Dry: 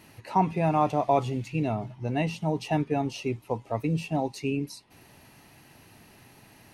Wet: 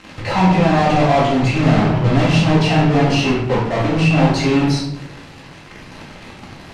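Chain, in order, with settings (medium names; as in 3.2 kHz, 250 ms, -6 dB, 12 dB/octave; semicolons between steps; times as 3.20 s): 1.55–2.52 s: jump at every zero crossing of -42.5 dBFS; 3.48–4.15 s: bass shelf 84 Hz -10.5 dB; in parallel at -5 dB: fuzz box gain 48 dB, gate -49 dBFS; on the sum: distance through air 110 m; simulated room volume 220 m³, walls mixed, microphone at 2.1 m; trim -4.5 dB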